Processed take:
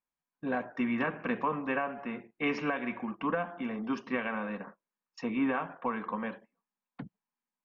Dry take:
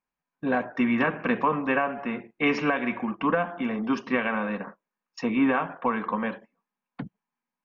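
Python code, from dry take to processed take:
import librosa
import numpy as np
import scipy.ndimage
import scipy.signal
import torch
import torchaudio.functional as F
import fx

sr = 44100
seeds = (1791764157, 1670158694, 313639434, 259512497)

y = scipy.signal.sosfilt(scipy.signal.cheby1(3, 1.0, 8800.0, 'lowpass', fs=sr, output='sos'), x)
y = F.gain(torch.from_numpy(y), -7.0).numpy()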